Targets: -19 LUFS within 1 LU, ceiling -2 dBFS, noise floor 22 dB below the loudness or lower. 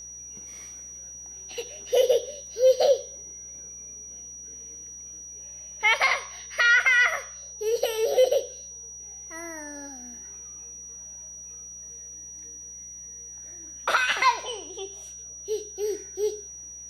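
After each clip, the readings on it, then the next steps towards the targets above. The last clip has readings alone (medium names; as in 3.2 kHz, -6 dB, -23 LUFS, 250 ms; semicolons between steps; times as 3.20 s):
hum 60 Hz; highest harmonic 180 Hz; hum level -56 dBFS; steady tone 5.8 kHz; tone level -39 dBFS; loudness -24.5 LUFS; peak level -10.5 dBFS; loudness target -19.0 LUFS
-> de-hum 60 Hz, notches 3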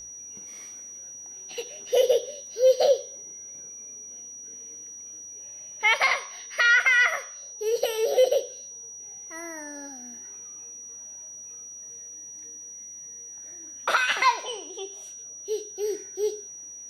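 hum not found; steady tone 5.8 kHz; tone level -39 dBFS
-> band-stop 5.8 kHz, Q 30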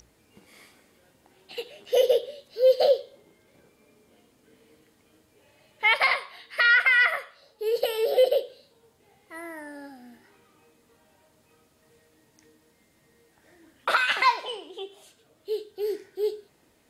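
steady tone not found; loudness -23.5 LUFS; peak level -11.0 dBFS; loudness target -19.0 LUFS
-> trim +4.5 dB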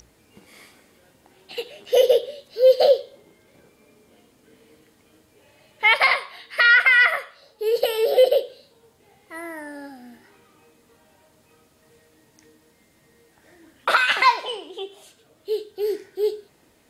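loudness -19.0 LUFS; peak level -6.5 dBFS; noise floor -60 dBFS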